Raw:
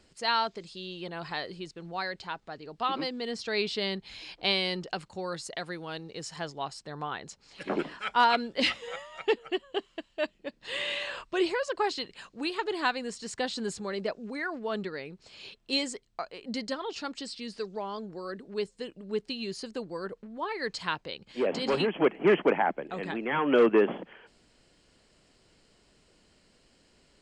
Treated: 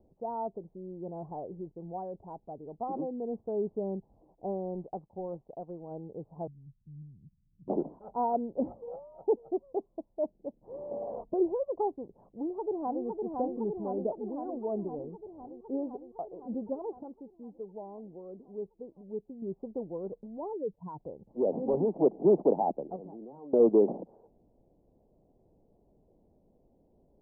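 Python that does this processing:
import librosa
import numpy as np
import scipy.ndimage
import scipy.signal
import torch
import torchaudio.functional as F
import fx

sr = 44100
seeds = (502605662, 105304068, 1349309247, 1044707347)

y = fx.law_mismatch(x, sr, coded='A', at=(4.04, 5.9), fade=0.02)
y = fx.cheby2_lowpass(y, sr, hz=590.0, order=4, stop_db=60, at=(6.47, 7.68))
y = fx.small_body(y, sr, hz=(230.0, 450.0, 680.0), ring_ms=35, db=14, at=(10.91, 11.34))
y = fx.echo_throw(y, sr, start_s=12.24, length_s=0.81, ms=510, feedback_pct=75, wet_db=-3.0)
y = fx.median_filter(y, sr, points=25, at=(14.85, 15.45))
y = fx.spec_expand(y, sr, power=2.0, at=(20.53, 21.0))
y = fx.level_steps(y, sr, step_db=22, at=(22.96, 23.6))
y = fx.edit(y, sr, fx.clip_gain(start_s=17.03, length_s=2.39, db=-6.0), tone=tone)
y = scipy.signal.sosfilt(scipy.signal.butter(8, 830.0, 'lowpass', fs=sr, output='sos'), y)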